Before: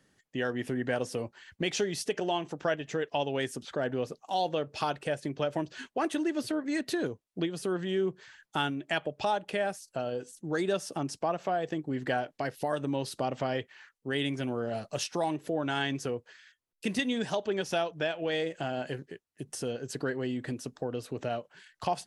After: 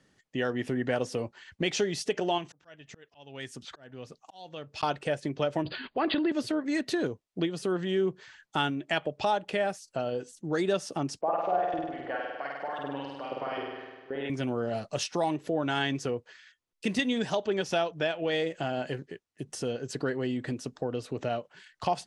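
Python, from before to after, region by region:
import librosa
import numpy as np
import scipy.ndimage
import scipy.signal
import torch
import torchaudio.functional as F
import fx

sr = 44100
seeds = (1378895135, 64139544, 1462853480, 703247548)

y = fx.chain(x, sr, fx.auto_swell(attack_ms=580.0),
    fx.peak_eq(hz=450.0, db=-7.0, octaves=2.2), at=(2.38, 4.83))
y = fx.chain(y, sr, fx.brickwall_lowpass(high_hz=4900.0),
    fx.transient(attack_db=-1, sustain_db=11), at=(5.62, 6.32))
y = fx.chain(y, sr, fx.high_shelf(hz=4300.0, db=-10.5),
    fx.filter_lfo_bandpass(shape='saw_up', hz=3.8, low_hz=440.0, high_hz=3600.0, q=1.4),
    fx.room_flutter(wall_m=8.6, rt60_s=1.4), at=(11.21, 14.3))
y = scipy.signal.sosfilt(scipy.signal.butter(2, 7900.0, 'lowpass', fs=sr, output='sos'), y)
y = fx.notch(y, sr, hz=1600.0, q=27.0)
y = y * librosa.db_to_amplitude(2.0)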